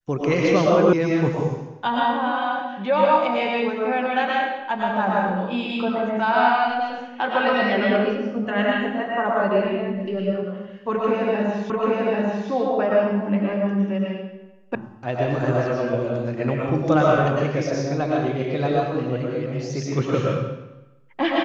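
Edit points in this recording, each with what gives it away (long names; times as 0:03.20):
0:00.93: cut off before it has died away
0:11.70: the same again, the last 0.79 s
0:14.75: cut off before it has died away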